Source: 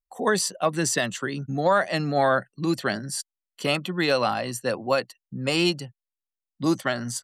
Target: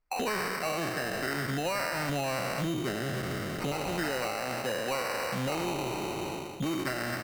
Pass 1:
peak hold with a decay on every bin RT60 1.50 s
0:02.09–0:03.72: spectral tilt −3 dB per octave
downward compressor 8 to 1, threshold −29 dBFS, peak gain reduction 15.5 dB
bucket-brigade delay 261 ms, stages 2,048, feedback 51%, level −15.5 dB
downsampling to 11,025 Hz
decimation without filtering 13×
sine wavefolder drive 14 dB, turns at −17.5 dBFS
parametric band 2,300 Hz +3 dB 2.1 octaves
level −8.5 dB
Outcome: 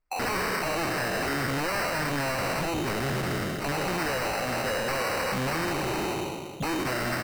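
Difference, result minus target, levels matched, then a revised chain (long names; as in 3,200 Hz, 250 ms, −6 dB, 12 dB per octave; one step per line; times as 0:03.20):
downward compressor: peak gain reduction −8.5 dB
peak hold with a decay on every bin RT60 1.50 s
0:02.09–0:03.72: spectral tilt −3 dB per octave
downward compressor 8 to 1, threshold −38.5 dBFS, peak gain reduction 24 dB
bucket-brigade delay 261 ms, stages 2,048, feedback 51%, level −15.5 dB
downsampling to 11,025 Hz
decimation without filtering 13×
sine wavefolder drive 14 dB, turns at −17.5 dBFS
parametric band 2,300 Hz +3 dB 2.1 octaves
level −8.5 dB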